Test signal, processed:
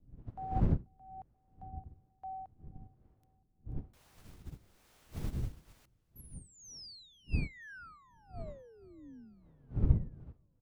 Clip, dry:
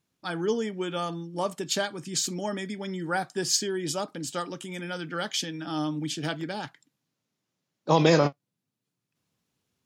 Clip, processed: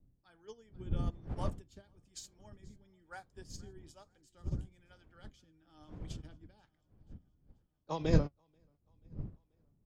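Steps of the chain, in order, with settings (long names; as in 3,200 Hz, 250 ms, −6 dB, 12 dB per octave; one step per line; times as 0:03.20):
wind on the microphone 120 Hz −26 dBFS
two-band tremolo in antiphase 1.1 Hz, depth 70%, crossover 420 Hz
on a send: repeating echo 485 ms, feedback 60%, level −20 dB
on the sum: expander for the loud parts 2.5 to 1, over −33 dBFS
level −3 dB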